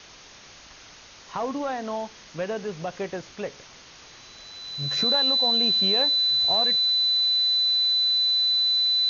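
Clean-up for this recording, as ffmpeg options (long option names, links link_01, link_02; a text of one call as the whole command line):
ffmpeg -i in.wav -af "bandreject=frequency=4000:width=30,afwtdn=0.0071" out.wav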